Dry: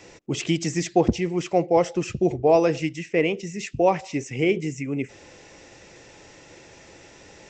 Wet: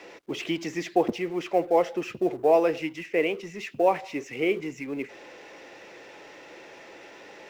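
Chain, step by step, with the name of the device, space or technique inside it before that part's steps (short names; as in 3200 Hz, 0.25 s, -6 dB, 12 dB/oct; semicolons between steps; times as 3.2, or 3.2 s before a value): phone line with mismatched companding (BPF 330–3300 Hz; G.711 law mismatch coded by mu); gain -2 dB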